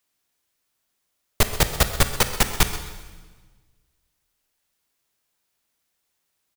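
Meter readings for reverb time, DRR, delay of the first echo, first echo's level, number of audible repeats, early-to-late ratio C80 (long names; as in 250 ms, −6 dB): 1.4 s, 8.0 dB, 130 ms, −15.5 dB, 1, 10.0 dB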